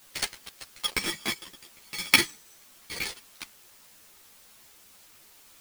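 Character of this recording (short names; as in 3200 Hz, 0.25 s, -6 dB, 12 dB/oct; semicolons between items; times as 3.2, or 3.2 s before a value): aliases and images of a low sample rate 14000 Hz, jitter 0%; chopped level 2.4 Hz, depth 60%, duty 15%; a quantiser's noise floor 10-bit, dither triangular; a shimmering, thickened sound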